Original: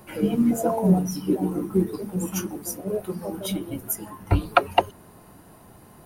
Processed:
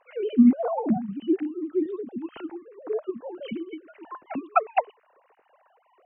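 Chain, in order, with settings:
three sine waves on the formant tracks
0:01.11–0:01.86: flat-topped bell 740 Hz −15 dB
level −1.5 dB

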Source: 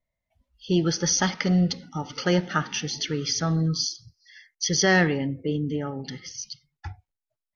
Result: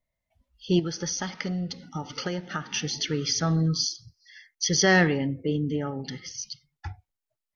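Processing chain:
0:00.79–0:02.73: downward compressor 6 to 1, threshold −28 dBFS, peak gain reduction 10.5 dB

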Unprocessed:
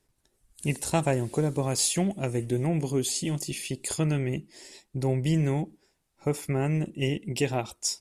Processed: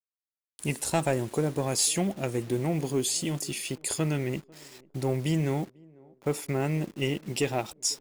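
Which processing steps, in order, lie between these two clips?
hold until the input has moved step −45 dBFS
low-shelf EQ 150 Hz −8 dB
leveller curve on the samples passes 1
on a send: feedback echo with a band-pass in the loop 496 ms, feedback 48%, band-pass 410 Hz, level −24 dB
on the sum: level −2.5 dB

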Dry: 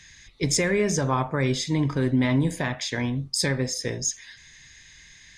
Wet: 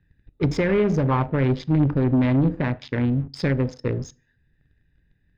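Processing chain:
adaptive Wiener filter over 41 samples
notch filter 680 Hz, Q 12
leveller curve on the samples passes 2
high-frequency loss of the air 330 metres
on a send: convolution reverb RT60 0.40 s, pre-delay 3 ms, DRR 19.5 dB

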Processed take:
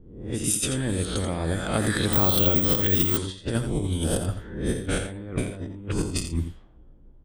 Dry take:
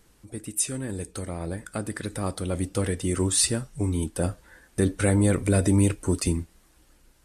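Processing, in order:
peak hold with a rise ahead of every peak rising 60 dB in 0.74 s
low-shelf EQ 140 Hz +7 dB
harmonic and percussive parts rebalanced percussive +5 dB
parametric band 3,300 Hz +14.5 dB 0.23 octaves
compressor whose output falls as the input rises −22 dBFS, ratio −0.5
low-pass that shuts in the quiet parts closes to 370 Hz, open at −18.5 dBFS
on a send: single-tap delay 85 ms −9 dB
0:02.13–0:03.17: on the sum: bad sample-rate conversion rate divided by 2×, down filtered, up zero stuff
level −3.5 dB

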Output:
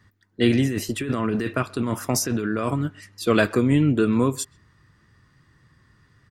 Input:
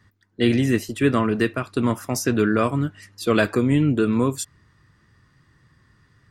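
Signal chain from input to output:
0:00.66–0:02.86: compressor whose output falls as the input rises −24 dBFS, ratio −1
far-end echo of a speakerphone 130 ms, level −24 dB

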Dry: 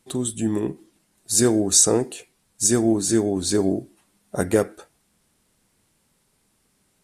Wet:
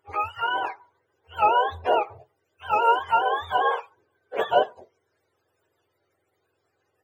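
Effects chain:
frequency axis turned over on the octave scale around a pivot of 560 Hz
low shelf with overshoot 290 Hz −12.5 dB, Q 3

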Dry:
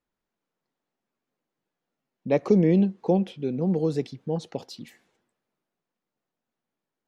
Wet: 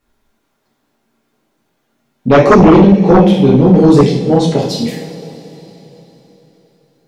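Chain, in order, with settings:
low-shelf EQ 64 Hz +6.5 dB
coupled-rooms reverb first 0.55 s, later 3.9 s, from −18 dB, DRR −5 dB
sine wavefolder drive 14 dB, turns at 2 dBFS
level −3.5 dB

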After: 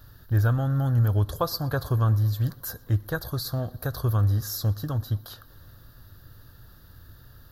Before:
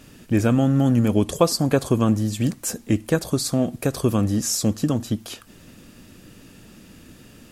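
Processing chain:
drawn EQ curve 110 Hz 0 dB, 210 Hz −22 dB, 1,600 Hz −4 dB, 2,400 Hz −29 dB, 4,000 Hz −6 dB, 8,500 Hz −26 dB, 13,000 Hz +1 dB
tape delay 120 ms, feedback 80%, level −22 dB, low-pass 4,200 Hz
level +4 dB

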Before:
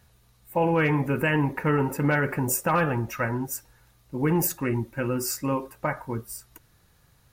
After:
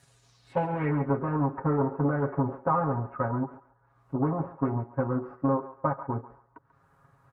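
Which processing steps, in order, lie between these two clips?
tube saturation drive 26 dB, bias 0.5
high-pass filter 52 Hz
low-shelf EQ 220 Hz −4 dB
comb filter 7.3 ms, depth 96%
transient designer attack +5 dB, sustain −6 dB
low-pass filter sweep 8,600 Hz → 1,200 Hz, 0:00.12–0:01.13
background noise violet −77 dBFS
treble cut that deepens with the level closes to 870 Hz, closed at −43.5 dBFS
on a send: feedback echo with a high-pass in the loop 139 ms, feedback 32%, high-pass 760 Hz, level −12 dB

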